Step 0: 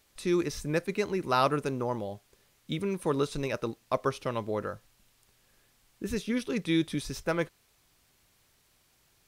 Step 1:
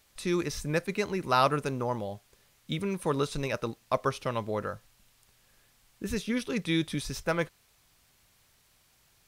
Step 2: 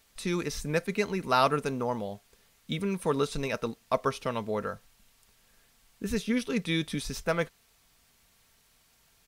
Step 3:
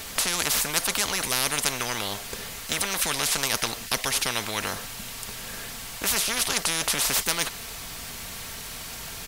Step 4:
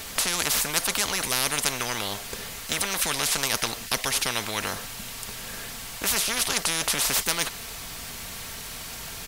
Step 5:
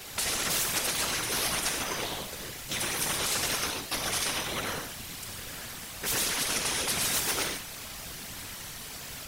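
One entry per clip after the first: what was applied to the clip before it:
bell 340 Hz -4.5 dB 0.99 oct; gain +2 dB
comb 4.4 ms, depth 35%
spectral compressor 10:1; gain +6.5 dB
nothing audible
non-linear reverb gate 0.17 s flat, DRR -0.5 dB; whisperiser; gain -7 dB

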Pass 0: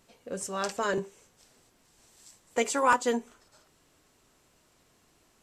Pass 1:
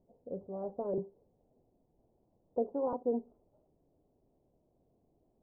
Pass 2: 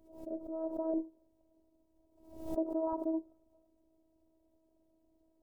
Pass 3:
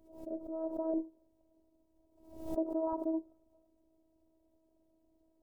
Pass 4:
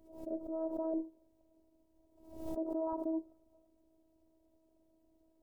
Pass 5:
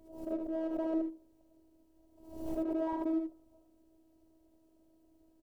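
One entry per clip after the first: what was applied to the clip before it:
steep low-pass 740 Hz 36 dB/oct; gain -4 dB
robotiser 321 Hz; backwards sustainer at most 87 dB/s; gain +3 dB
nothing audible
limiter -29 dBFS, peak gain reduction 7 dB; gain +1 dB
in parallel at -5 dB: one-sided clip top -37.5 dBFS; on the sum: echo 77 ms -5.5 dB

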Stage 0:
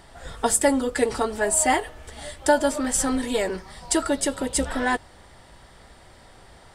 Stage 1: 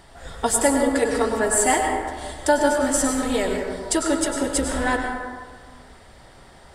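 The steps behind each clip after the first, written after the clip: plate-style reverb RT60 1.6 s, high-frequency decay 0.4×, pre-delay 85 ms, DRR 2 dB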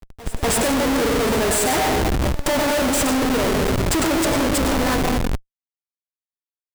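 dynamic EQ 1600 Hz, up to -5 dB, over -37 dBFS, Q 1.1; Schmitt trigger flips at -27.5 dBFS; reverse echo 0.243 s -19 dB; gain +5 dB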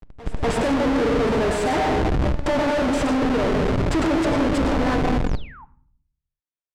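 painted sound fall, 5.26–5.65, 790–7900 Hz -41 dBFS; tape spacing loss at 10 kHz 20 dB; shoebox room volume 720 m³, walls furnished, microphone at 0.42 m

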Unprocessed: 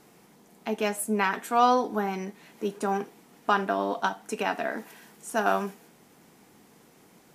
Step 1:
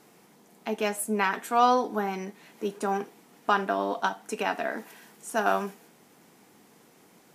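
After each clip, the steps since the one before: low shelf 89 Hz -11 dB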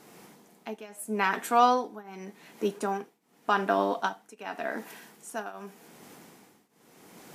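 reverse; upward compressor, threshold -45 dBFS; reverse; tremolo triangle 0.86 Hz, depth 95%; gain +3 dB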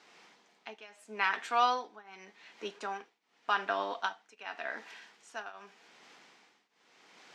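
band-pass 5400 Hz, Q 0.5; air absorption 170 m; gain +5 dB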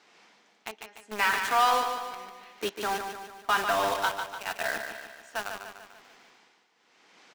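in parallel at -4 dB: companded quantiser 2-bit; on the sum: feedback echo 0.147 s, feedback 52%, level -7 dB

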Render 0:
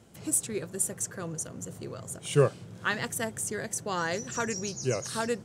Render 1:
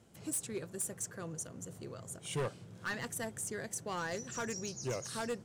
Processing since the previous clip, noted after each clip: overloaded stage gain 25 dB; gain -6.5 dB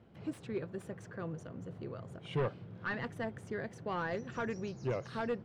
air absorption 350 m; gain +3.5 dB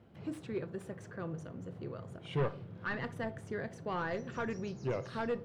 reverb RT60 0.45 s, pre-delay 6 ms, DRR 13 dB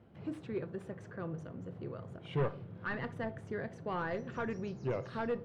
high shelf 5400 Hz -12 dB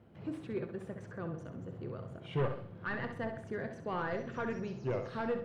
flutter echo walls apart 11.2 m, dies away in 0.48 s

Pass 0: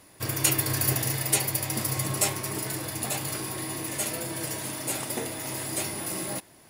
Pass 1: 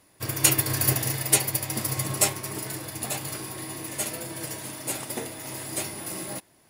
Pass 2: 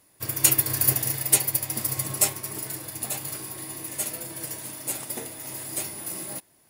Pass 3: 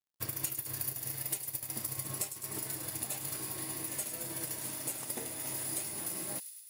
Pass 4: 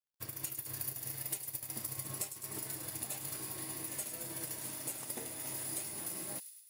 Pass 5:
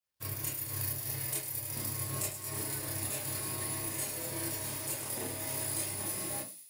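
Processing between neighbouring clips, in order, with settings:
upward expander 1.5:1, over -40 dBFS; gain +4.5 dB
high shelf 9200 Hz +10 dB; gain -4 dB
compressor 8:1, threshold -33 dBFS, peak gain reduction 20 dB; crossover distortion -52 dBFS; thin delay 0.104 s, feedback 66%, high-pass 3700 Hz, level -9 dB
AGC gain up to 3.5 dB; gain -6.5 dB
reverb RT60 0.30 s, pre-delay 23 ms, DRR -5.5 dB

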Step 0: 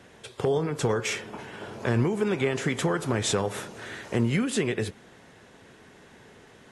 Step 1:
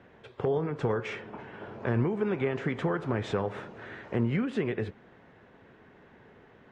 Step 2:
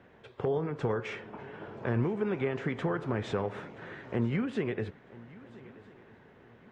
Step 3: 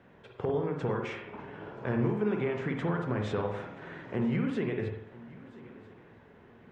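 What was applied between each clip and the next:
LPF 2100 Hz 12 dB/oct; gain -3 dB
swung echo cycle 1.303 s, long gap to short 3:1, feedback 31%, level -20.5 dB; gain -2 dB
reverb RT60 0.70 s, pre-delay 47 ms, DRR 3.5 dB; gain -1.5 dB

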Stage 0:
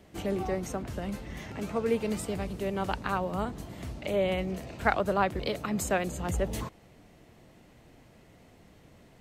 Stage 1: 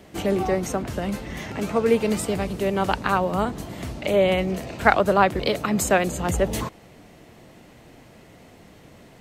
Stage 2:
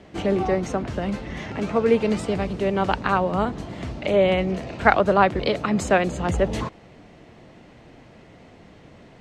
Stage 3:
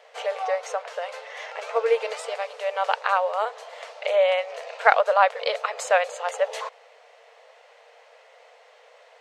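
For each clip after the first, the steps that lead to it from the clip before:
low shelf 100 Hz -6.5 dB; gain +9 dB
air absorption 100 m; gain +1 dB
brick-wall FIR high-pass 440 Hz

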